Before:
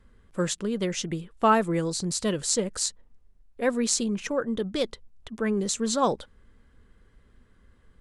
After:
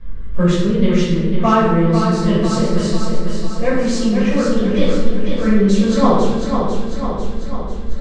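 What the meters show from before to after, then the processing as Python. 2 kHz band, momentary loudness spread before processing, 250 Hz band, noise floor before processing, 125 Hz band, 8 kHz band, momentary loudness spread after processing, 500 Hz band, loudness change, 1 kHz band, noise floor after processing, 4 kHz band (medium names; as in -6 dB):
+8.0 dB, 8 LU, +14.5 dB, -60 dBFS, +17.0 dB, -4.0 dB, 10 LU, +10.5 dB, +10.0 dB, +8.5 dB, -22 dBFS, +5.0 dB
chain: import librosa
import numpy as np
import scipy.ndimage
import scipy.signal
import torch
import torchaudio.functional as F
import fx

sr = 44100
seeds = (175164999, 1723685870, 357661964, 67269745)

p1 = fx.law_mismatch(x, sr, coded='mu')
p2 = p1 + fx.echo_feedback(p1, sr, ms=497, feedback_pct=55, wet_db=-6, dry=0)
p3 = fx.rider(p2, sr, range_db=3, speed_s=2.0)
p4 = scipy.signal.sosfilt(scipy.signal.butter(2, 4000.0, 'lowpass', fs=sr, output='sos'), p3)
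p5 = fx.low_shelf(p4, sr, hz=140.0, db=11.0)
p6 = fx.room_shoebox(p5, sr, seeds[0], volume_m3=530.0, walls='mixed', distance_m=5.6)
y = p6 * librosa.db_to_amplitude(-5.5)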